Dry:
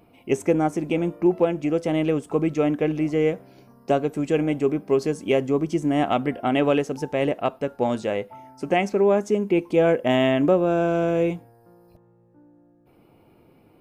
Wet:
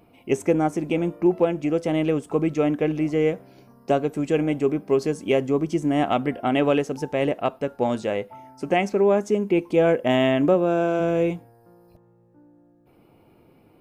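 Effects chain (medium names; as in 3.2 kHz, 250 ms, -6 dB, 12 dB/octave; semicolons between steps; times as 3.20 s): 10.54–10.99 s: high-pass 100 Hz -> 230 Hz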